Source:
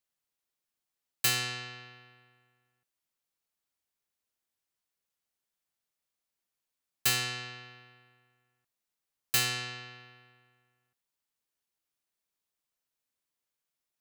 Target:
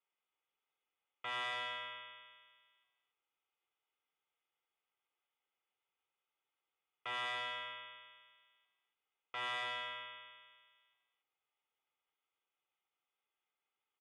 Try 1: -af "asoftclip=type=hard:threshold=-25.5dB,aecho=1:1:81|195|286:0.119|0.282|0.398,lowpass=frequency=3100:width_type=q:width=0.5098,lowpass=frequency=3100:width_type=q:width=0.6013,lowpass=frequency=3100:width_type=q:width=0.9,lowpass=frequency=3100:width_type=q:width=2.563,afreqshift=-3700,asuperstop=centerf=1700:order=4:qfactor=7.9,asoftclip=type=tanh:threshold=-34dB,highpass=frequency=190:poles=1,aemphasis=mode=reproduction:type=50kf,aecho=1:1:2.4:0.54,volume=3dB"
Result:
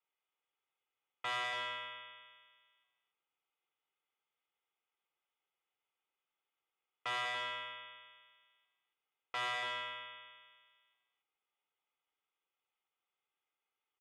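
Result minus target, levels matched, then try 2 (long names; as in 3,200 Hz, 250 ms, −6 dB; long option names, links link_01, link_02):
hard clipping: distortion −6 dB
-af "asoftclip=type=hard:threshold=-33.5dB,aecho=1:1:81|195|286:0.119|0.282|0.398,lowpass=frequency=3100:width_type=q:width=0.5098,lowpass=frequency=3100:width_type=q:width=0.6013,lowpass=frequency=3100:width_type=q:width=0.9,lowpass=frequency=3100:width_type=q:width=2.563,afreqshift=-3700,asuperstop=centerf=1700:order=4:qfactor=7.9,asoftclip=type=tanh:threshold=-34dB,highpass=frequency=190:poles=1,aemphasis=mode=reproduction:type=50kf,aecho=1:1:2.4:0.54,volume=3dB"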